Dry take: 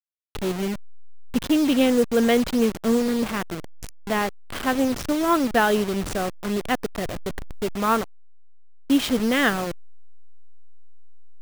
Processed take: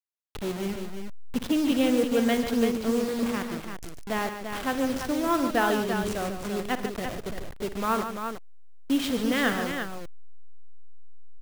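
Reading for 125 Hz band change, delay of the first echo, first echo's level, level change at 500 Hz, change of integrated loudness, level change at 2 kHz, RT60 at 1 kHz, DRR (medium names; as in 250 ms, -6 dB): -4.0 dB, 56 ms, -13.5 dB, -4.5 dB, -4.5 dB, -4.0 dB, no reverb, no reverb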